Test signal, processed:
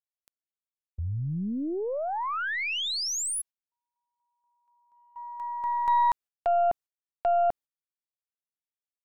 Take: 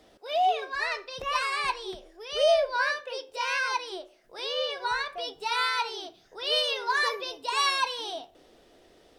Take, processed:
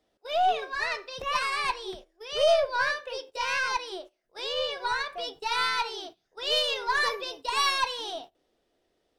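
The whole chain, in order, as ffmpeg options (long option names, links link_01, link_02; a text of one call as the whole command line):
ffmpeg -i in.wav -af "aeval=exprs='0.251*(cos(1*acos(clip(val(0)/0.251,-1,1)))-cos(1*PI/2))+0.01*(cos(6*acos(clip(val(0)/0.251,-1,1)))-cos(6*PI/2))':channel_layout=same,agate=range=-16dB:threshold=-44dB:ratio=16:detection=peak" out.wav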